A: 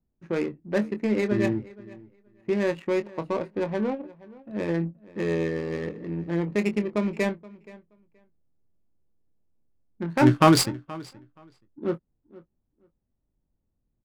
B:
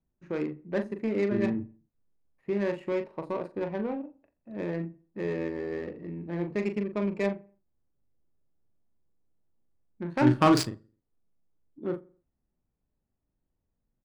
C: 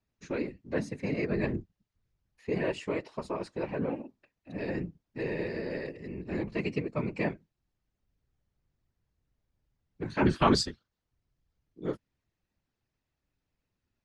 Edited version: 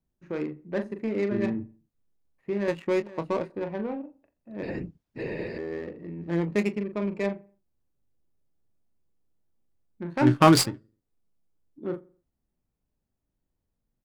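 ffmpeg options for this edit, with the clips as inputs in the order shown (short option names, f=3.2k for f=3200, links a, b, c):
-filter_complex "[0:a]asplit=3[a][b][c];[1:a]asplit=5[d][e][f][g][h];[d]atrim=end=2.682[i];[a]atrim=start=2.678:end=3.502[j];[e]atrim=start=3.498:end=4.632[k];[2:a]atrim=start=4.628:end=5.582[l];[f]atrim=start=5.578:end=6.34[m];[b]atrim=start=6.18:end=6.77[n];[g]atrim=start=6.61:end=10.42[o];[c]atrim=start=10.18:end=10.83[p];[h]atrim=start=10.59[q];[i][j]acrossfade=d=0.004:c1=hsin:c2=hsin[r];[r][k]acrossfade=d=0.004:c1=hsin:c2=hsin[s];[s][l]acrossfade=d=0.004:c1=hsin:c2=hsin[t];[t][m]acrossfade=d=0.004:c1=hsin:c2=hsin[u];[u][n]acrossfade=d=0.16:c1=tri:c2=tri[v];[v][o]acrossfade=d=0.16:c1=tri:c2=tri[w];[w][p]acrossfade=d=0.24:c1=tri:c2=tri[x];[x][q]acrossfade=d=0.24:c1=tri:c2=tri"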